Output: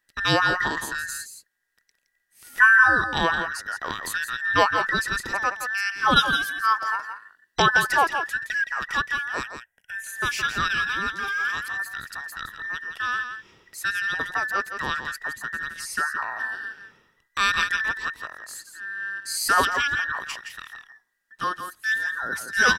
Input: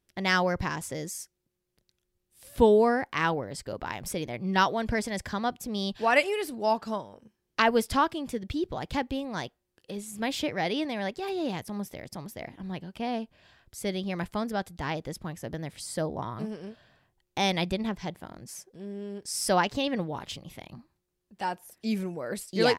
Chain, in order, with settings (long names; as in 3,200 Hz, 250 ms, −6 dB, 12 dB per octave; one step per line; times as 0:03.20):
frequency inversion band by band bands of 2,000 Hz
0:09.43–0:10.04: phaser with its sweep stopped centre 1,200 Hz, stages 6
on a send: single-tap delay 168 ms −8.5 dB
on the sum: level +4 dB